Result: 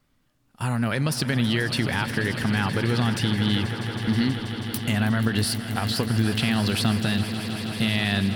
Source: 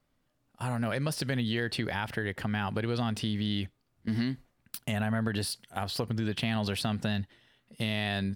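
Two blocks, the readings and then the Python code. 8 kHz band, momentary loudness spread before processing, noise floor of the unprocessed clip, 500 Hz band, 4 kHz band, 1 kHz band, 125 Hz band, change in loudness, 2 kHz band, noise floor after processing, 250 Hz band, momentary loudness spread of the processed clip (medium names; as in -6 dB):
+9.0 dB, 6 LU, -75 dBFS, +5.0 dB, +8.5 dB, +6.0 dB, +8.5 dB, +7.5 dB, +8.5 dB, -66 dBFS, +8.0 dB, 6 LU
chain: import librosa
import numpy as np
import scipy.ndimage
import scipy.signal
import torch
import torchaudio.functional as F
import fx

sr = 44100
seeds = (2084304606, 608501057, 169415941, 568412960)

p1 = fx.peak_eq(x, sr, hz=620.0, db=-6.0, octaves=1.0)
p2 = p1 + fx.echo_swell(p1, sr, ms=161, loudest=5, wet_db=-14.0, dry=0)
y = p2 * 10.0 ** (7.5 / 20.0)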